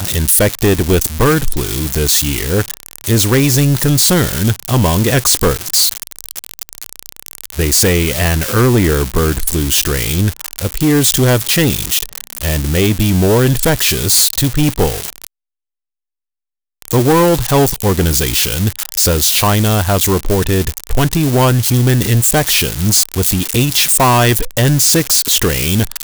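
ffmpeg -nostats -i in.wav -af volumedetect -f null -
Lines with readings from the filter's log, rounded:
mean_volume: -13.6 dB
max_volume: -5.5 dB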